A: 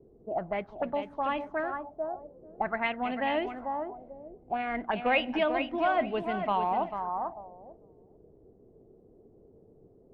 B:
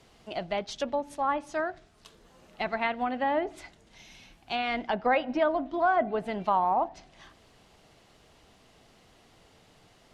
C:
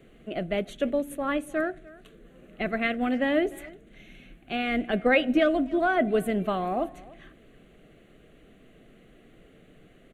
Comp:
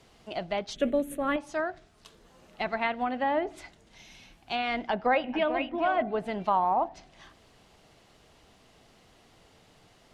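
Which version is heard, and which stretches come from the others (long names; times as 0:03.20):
B
0:00.76–0:01.36: punch in from C
0:05.24–0:06.02: punch in from A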